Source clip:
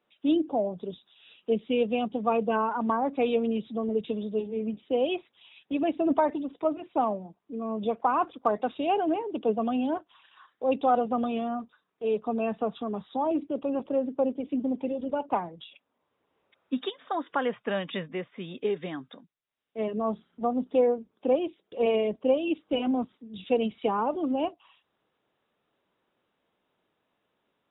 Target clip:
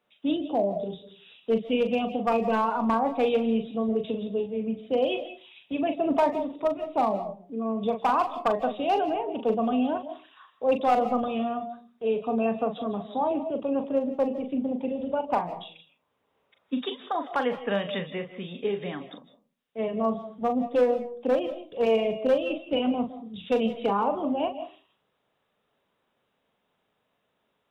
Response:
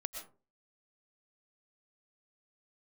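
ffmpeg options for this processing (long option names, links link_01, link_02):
-filter_complex "[0:a]equalizer=frequency=330:width=4.7:gain=-7.5,volume=18.5dB,asoftclip=hard,volume=-18.5dB,asplit=2[link_01][link_02];[link_02]equalizer=frequency=1500:width=3.5:gain=-12[link_03];[1:a]atrim=start_sample=2205,adelay=40[link_04];[link_03][link_04]afir=irnorm=-1:irlink=0,volume=-4dB[link_05];[link_01][link_05]amix=inputs=2:normalize=0,volume=1.5dB"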